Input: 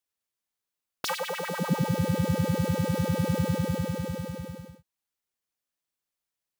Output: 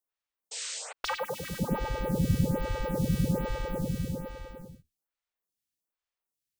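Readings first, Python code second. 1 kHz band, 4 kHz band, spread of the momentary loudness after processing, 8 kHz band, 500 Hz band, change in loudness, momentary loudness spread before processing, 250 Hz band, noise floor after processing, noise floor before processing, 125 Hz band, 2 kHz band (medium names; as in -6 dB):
-2.5 dB, -2.0 dB, 14 LU, +1.0 dB, -2.5 dB, -3.0 dB, 9 LU, -3.0 dB, under -85 dBFS, under -85 dBFS, -3.0 dB, -3.0 dB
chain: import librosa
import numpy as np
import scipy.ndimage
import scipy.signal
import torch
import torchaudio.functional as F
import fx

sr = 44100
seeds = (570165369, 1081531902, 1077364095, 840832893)

y = fx.octave_divider(x, sr, octaves=2, level_db=-2.0)
y = fx.spec_paint(y, sr, seeds[0], shape='noise', start_s=0.51, length_s=0.42, low_hz=420.0, high_hz=8700.0, level_db=-35.0)
y = fx.stagger_phaser(y, sr, hz=1.2)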